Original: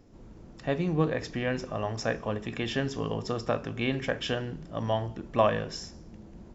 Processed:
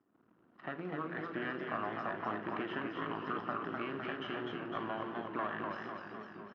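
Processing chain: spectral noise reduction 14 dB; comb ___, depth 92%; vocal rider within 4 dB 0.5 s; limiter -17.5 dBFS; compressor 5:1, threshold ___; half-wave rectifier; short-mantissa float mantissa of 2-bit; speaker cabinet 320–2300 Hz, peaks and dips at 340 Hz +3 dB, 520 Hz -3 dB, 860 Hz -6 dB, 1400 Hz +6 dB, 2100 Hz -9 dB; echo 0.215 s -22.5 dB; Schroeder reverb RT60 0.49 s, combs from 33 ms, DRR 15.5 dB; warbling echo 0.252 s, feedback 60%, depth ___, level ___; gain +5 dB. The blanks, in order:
1 ms, -33 dBFS, 115 cents, -4 dB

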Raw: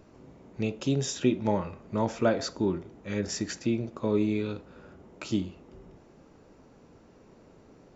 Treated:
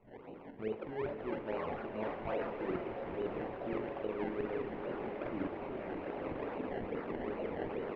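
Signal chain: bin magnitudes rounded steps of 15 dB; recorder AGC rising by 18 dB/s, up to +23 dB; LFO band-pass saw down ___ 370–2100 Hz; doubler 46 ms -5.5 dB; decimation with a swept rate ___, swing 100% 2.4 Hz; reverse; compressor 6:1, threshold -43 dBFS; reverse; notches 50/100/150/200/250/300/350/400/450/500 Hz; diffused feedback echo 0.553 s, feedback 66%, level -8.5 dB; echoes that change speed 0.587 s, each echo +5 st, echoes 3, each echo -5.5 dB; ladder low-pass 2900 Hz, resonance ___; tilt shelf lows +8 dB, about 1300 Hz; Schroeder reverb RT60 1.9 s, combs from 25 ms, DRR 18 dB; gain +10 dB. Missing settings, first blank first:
5.9 Hz, 25×, 40%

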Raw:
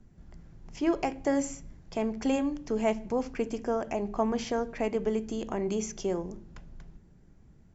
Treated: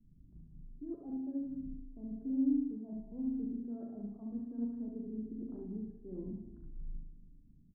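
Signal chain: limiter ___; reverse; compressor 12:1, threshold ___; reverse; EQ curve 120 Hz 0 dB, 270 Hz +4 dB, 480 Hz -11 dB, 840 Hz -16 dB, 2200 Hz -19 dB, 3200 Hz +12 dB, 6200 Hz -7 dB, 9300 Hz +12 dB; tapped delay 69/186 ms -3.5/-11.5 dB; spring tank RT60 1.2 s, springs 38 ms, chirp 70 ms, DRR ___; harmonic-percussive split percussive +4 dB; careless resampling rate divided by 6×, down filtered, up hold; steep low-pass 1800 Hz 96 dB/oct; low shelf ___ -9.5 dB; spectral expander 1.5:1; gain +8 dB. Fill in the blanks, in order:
-17.5 dBFS, -38 dBFS, 2 dB, 370 Hz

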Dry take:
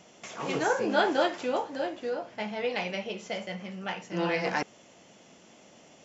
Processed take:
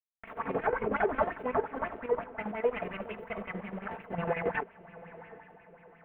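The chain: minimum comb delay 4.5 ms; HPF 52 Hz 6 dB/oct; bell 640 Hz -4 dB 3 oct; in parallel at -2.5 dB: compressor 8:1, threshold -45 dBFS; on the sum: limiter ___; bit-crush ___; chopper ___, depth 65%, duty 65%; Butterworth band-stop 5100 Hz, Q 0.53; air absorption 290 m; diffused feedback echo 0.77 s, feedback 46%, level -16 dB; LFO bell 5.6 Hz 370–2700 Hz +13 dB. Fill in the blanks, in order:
-21 dBFS, 7-bit, 11 Hz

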